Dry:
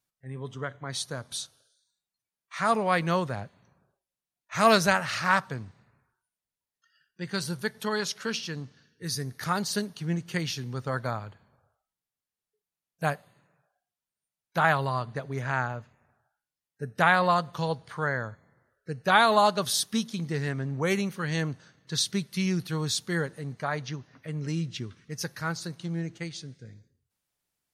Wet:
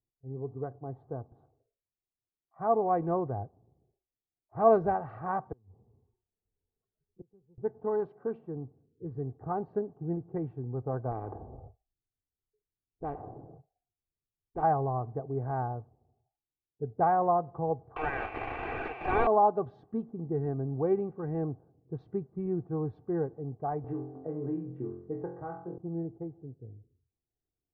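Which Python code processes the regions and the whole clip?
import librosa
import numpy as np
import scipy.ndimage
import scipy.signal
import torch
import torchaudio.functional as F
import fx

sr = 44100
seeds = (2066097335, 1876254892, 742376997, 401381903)

y = fx.chain(x, sr, fx.ripple_eq(per_octave=0.88, db=7),
    fx.gate_flip(shuts_db=-29.0, range_db=-27),
    fx.band_squash(depth_pct=40), at=(5.52, 7.58))
y = fx.chain(y, sr, fx.gate_hold(open_db=-57.0, close_db=-65.0, hold_ms=71.0, range_db=-21, attack_ms=1.4, release_ms=100.0),
    fx.low_shelf(hz=150.0, db=10.5),
    fx.spectral_comp(ratio=4.0), at=(11.11, 14.63))
y = fx.chain(y, sr, fx.zero_step(step_db=-23.0),
    fx.highpass_res(hz=2500.0, q=11.0),
    fx.leveller(passes=5), at=(17.96, 19.27))
y = fx.chain(y, sr, fx.highpass(hz=290.0, slope=6),
    fx.room_flutter(wall_m=3.9, rt60_s=0.48),
    fx.band_squash(depth_pct=100), at=(23.84, 25.78))
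y = y + 0.61 * np.pad(y, (int(2.6 * sr / 1000.0), 0))[:len(y)]
y = fx.env_lowpass(y, sr, base_hz=410.0, full_db=-20.5)
y = scipy.signal.sosfilt(scipy.signal.cheby1(3, 1.0, 780.0, 'lowpass', fs=sr, output='sos'), y)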